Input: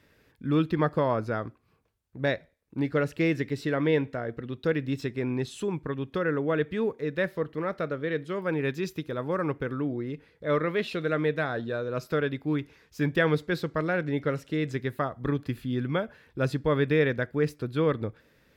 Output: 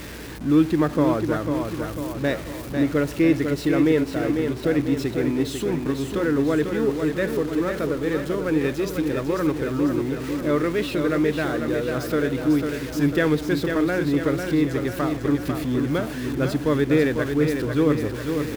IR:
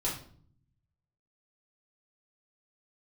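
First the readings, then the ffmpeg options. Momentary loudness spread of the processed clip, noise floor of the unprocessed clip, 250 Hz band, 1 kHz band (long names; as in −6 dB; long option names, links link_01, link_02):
6 LU, −66 dBFS, +9.0 dB, +3.0 dB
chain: -filter_complex "[0:a]aeval=exprs='val(0)+0.5*0.0224*sgn(val(0))':channel_layout=same,equalizer=frequency=310:width_type=o:width=0.54:gain=8,asplit=2[link_01][link_02];[link_02]aecho=0:1:497|994|1491|1988|2485|2982|3479:0.501|0.271|0.146|0.0789|0.0426|0.023|0.0124[link_03];[link_01][link_03]amix=inputs=2:normalize=0,aeval=exprs='val(0)+0.00891*(sin(2*PI*60*n/s)+sin(2*PI*2*60*n/s)/2+sin(2*PI*3*60*n/s)/3+sin(2*PI*4*60*n/s)/4+sin(2*PI*5*60*n/s)/5)':channel_layout=same"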